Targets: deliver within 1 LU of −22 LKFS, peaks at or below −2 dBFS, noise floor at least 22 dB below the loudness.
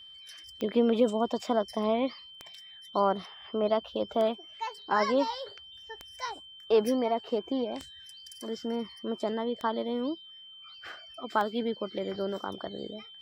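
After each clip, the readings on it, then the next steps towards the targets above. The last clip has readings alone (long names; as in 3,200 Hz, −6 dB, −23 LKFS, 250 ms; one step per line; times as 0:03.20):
number of clicks 8; interfering tone 3,100 Hz; level of the tone −47 dBFS; integrated loudness −30.5 LKFS; sample peak −12.5 dBFS; target loudness −22.0 LKFS
→ click removal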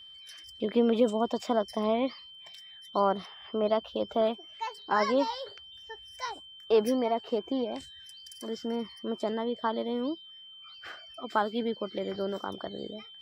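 number of clicks 1; interfering tone 3,100 Hz; level of the tone −47 dBFS
→ notch filter 3,100 Hz, Q 30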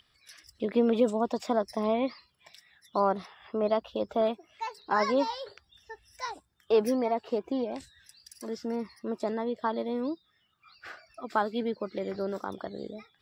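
interfering tone none found; integrated loudness −30.5 LKFS; sample peak −12.5 dBFS; target loudness −22.0 LKFS
→ level +8.5 dB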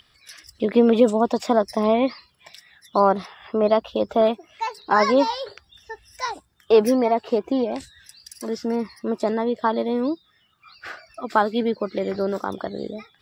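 integrated loudness −22.0 LKFS; sample peak −4.0 dBFS; background noise floor −62 dBFS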